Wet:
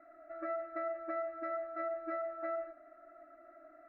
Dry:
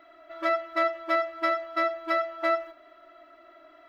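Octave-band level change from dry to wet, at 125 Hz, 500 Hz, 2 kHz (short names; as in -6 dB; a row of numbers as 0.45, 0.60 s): n/a, -9.0 dB, -18.0 dB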